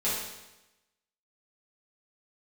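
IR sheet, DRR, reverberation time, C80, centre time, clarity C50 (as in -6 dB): -10.5 dB, 1.0 s, 4.0 dB, 67 ms, 0.5 dB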